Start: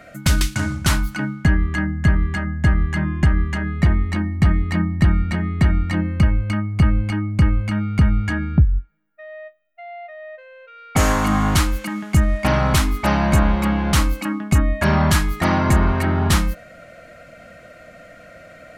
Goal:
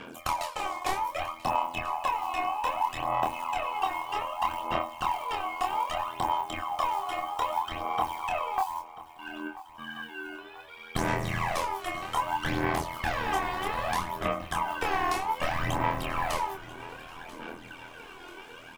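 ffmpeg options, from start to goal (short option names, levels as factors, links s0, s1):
-filter_complex "[0:a]lowshelf=f=480:g=-8,aeval=exprs='val(0)*sin(2*PI*920*n/s)':c=same,acrusher=bits=6:mode=log:mix=0:aa=0.000001,tremolo=f=83:d=0.788,aphaser=in_gain=1:out_gain=1:delay=2.8:decay=0.75:speed=0.63:type=sinusoidal,acrossover=split=1100|2300[s0][s1][s2];[s0]acompressor=threshold=0.0355:ratio=4[s3];[s1]acompressor=threshold=0.01:ratio=4[s4];[s2]acompressor=threshold=0.00708:ratio=4[s5];[s3][s4][s5]amix=inputs=3:normalize=0,asplit=2[s6][s7];[s7]adelay=26,volume=0.631[s8];[s6][s8]amix=inputs=2:normalize=0,asplit=2[s9][s10];[s10]aecho=0:1:988|1976|2964|3952:0.133|0.068|0.0347|0.0177[s11];[s9][s11]amix=inputs=2:normalize=0"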